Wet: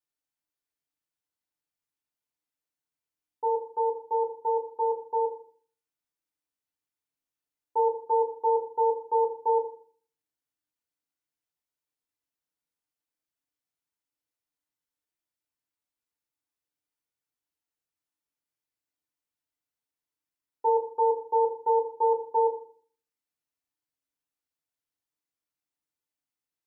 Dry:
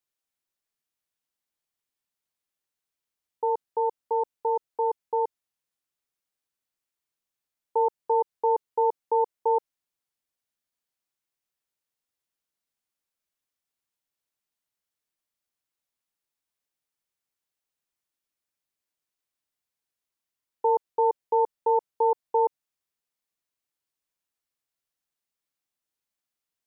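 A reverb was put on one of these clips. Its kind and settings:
feedback delay network reverb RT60 0.47 s, low-frequency decay 1.4×, high-frequency decay 0.55×, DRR −1.5 dB
level −8 dB

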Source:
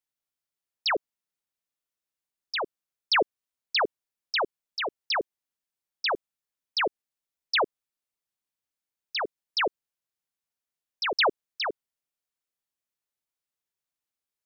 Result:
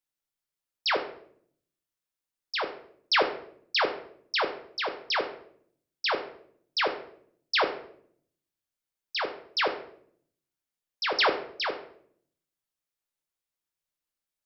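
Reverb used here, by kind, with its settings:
rectangular room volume 94 cubic metres, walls mixed, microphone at 0.52 metres
level −1.5 dB

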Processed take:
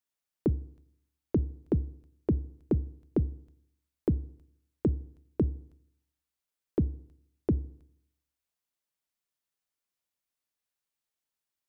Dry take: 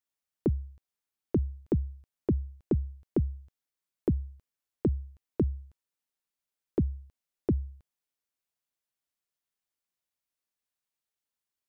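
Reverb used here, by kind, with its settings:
feedback delay network reverb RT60 0.73 s, low-frequency decay 1.05×, high-frequency decay 0.9×, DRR 19 dB

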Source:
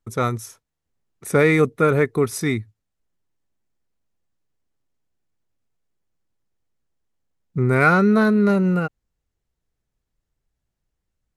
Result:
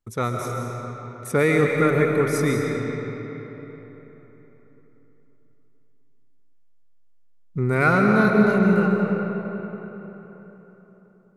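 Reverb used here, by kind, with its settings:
comb and all-pass reverb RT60 4 s, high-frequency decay 0.6×, pre-delay 95 ms, DRR 0.5 dB
level −3.5 dB

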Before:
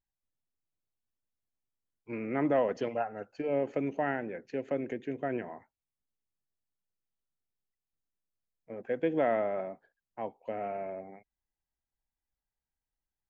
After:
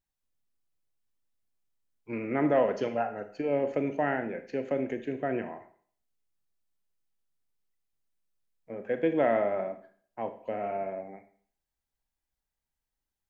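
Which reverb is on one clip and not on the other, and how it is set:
four-comb reverb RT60 0.5 s, combs from 27 ms, DRR 8.5 dB
level +2.5 dB

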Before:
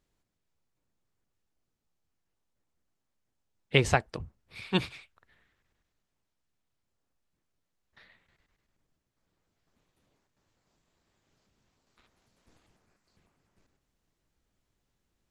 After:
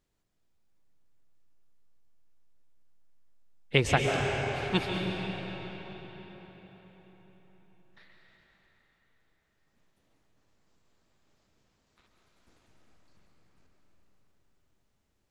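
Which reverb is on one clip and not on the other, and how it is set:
comb and all-pass reverb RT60 4.9 s, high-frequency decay 0.75×, pre-delay 95 ms, DRR 0 dB
level −1 dB

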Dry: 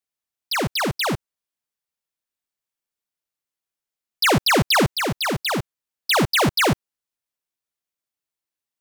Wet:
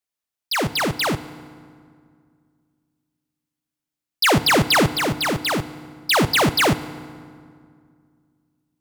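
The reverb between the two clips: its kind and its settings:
feedback delay network reverb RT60 2.1 s, low-frequency decay 1.35×, high-frequency decay 0.65×, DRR 14 dB
level +1 dB

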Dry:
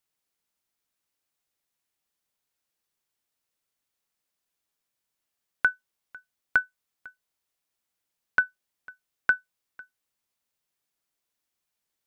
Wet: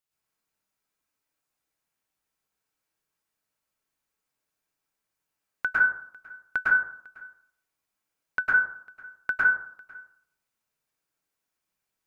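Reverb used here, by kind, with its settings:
dense smooth reverb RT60 0.61 s, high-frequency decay 0.3×, pre-delay 95 ms, DRR −7.5 dB
level −6 dB

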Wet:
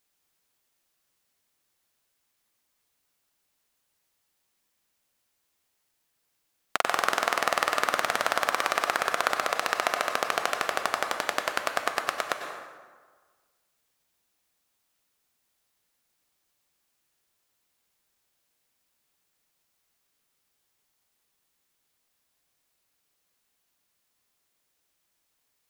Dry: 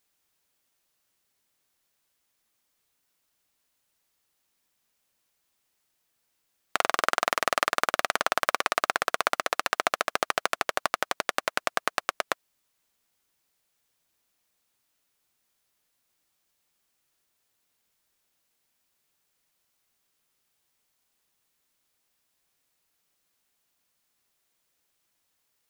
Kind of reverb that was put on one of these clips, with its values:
dense smooth reverb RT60 1.5 s, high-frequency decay 0.6×, pre-delay 85 ms, DRR 4.5 dB
level −1 dB

